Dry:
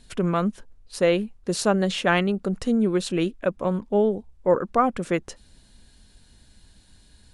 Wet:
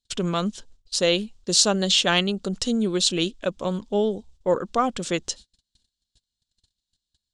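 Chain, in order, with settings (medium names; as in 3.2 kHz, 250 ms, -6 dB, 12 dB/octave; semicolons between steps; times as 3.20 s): gate -46 dBFS, range -36 dB; high-order bell 4.9 kHz +15 dB; trim -2 dB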